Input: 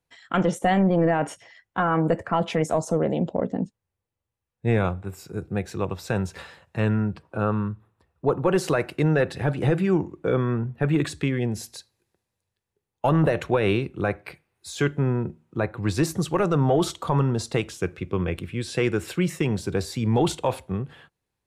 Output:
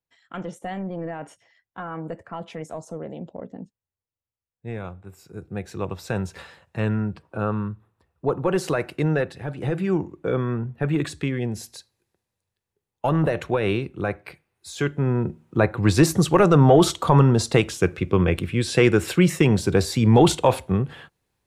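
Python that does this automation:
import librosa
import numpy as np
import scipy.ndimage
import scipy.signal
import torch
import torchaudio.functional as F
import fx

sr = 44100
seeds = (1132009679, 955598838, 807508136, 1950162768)

y = fx.gain(x, sr, db=fx.line((4.82, -11.0), (5.89, -1.0), (9.17, -1.0), (9.4, -8.0), (9.91, -1.0), (14.93, -1.0), (15.44, 6.5)))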